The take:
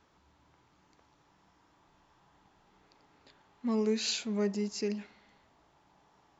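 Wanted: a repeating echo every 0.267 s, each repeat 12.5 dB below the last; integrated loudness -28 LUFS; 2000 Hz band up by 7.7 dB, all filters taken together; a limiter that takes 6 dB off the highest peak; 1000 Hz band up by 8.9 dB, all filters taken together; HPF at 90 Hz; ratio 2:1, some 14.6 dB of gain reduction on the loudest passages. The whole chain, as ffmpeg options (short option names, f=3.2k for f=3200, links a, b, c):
-af "highpass=90,equalizer=f=1k:t=o:g=8.5,equalizer=f=2k:t=o:g=8,acompressor=threshold=-52dB:ratio=2,alimiter=level_in=14dB:limit=-24dB:level=0:latency=1,volume=-14dB,aecho=1:1:267|534|801:0.237|0.0569|0.0137,volume=23.5dB"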